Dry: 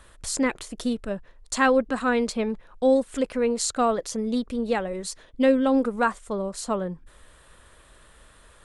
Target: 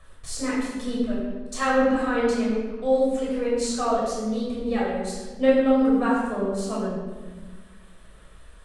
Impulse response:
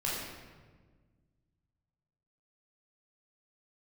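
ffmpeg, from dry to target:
-filter_complex "[0:a]aphaser=in_gain=1:out_gain=1:delay=4.7:decay=0.4:speed=1.1:type=sinusoidal[link_01];[1:a]atrim=start_sample=2205,asetrate=48510,aresample=44100[link_02];[link_01][link_02]afir=irnorm=-1:irlink=0,volume=-7dB"

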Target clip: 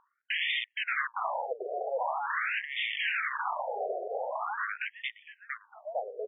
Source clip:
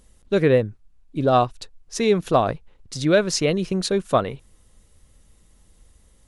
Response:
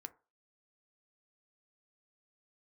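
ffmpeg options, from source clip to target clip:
-filter_complex "[0:a]aecho=1:1:458|916|1374|1832|2290|2748:0.335|0.167|0.0837|0.0419|0.0209|0.0105,aresample=11025,aeval=exprs='(mod(12.6*val(0)+1,2)-1)/12.6':channel_layout=same,aresample=44100,asetrate=48091,aresample=44100,atempo=0.917004,acrossover=split=320|760[link_01][link_02][link_03];[link_02]aeval=exprs='0.0531*sin(PI/2*7.08*val(0)/0.0531)':channel_layout=same[link_04];[link_03]agate=range=-33dB:threshold=-58dB:ratio=3:detection=peak[link_05];[link_01][link_04][link_05]amix=inputs=3:normalize=0,afftfilt=real='re*between(b*sr/1024,530*pow(2600/530,0.5+0.5*sin(2*PI*0.44*pts/sr))/1.41,530*pow(2600/530,0.5+0.5*sin(2*PI*0.44*pts/sr))*1.41)':imag='im*between(b*sr/1024,530*pow(2600/530,0.5+0.5*sin(2*PI*0.44*pts/sr))/1.41,530*pow(2600/530,0.5+0.5*sin(2*PI*0.44*pts/sr))*1.41)':win_size=1024:overlap=0.75"

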